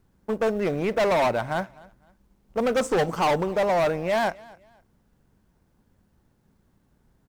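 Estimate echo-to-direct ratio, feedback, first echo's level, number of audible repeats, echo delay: −22.5 dB, 28%, −23.0 dB, 2, 255 ms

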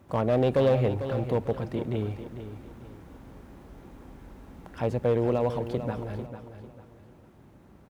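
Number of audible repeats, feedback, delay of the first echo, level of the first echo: 3, 33%, 447 ms, −10.5 dB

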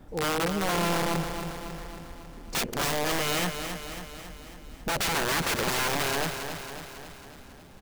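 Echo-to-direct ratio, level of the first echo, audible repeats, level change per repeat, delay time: −6.0 dB, −8.0 dB, 7, −4.5 dB, 274 ms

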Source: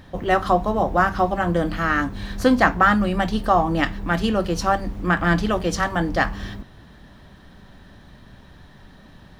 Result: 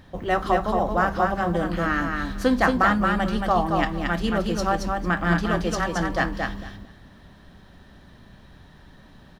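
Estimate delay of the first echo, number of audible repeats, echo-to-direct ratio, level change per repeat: 225 ms, 3, −4.0 dB, −15.5 dB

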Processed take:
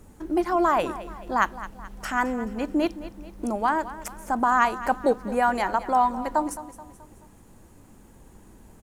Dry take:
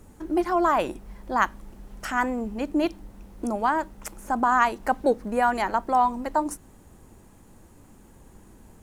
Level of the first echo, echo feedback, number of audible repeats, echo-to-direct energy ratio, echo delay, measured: −15.0 dB, 47%, 4, −14.0 dB, 215 ms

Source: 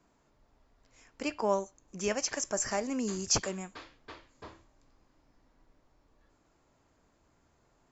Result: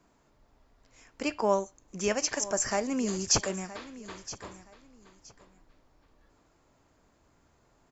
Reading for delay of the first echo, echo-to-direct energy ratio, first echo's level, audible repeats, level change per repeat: 970 ms, −16.0 dB, −16.0 dB, 2, −12.5 dB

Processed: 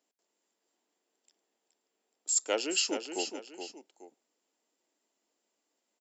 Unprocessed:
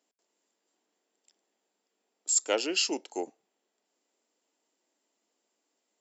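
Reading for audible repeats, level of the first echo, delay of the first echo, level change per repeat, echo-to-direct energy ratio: 2, −8.0 dB, 422 ms, −8.5 dB, −7.5 dB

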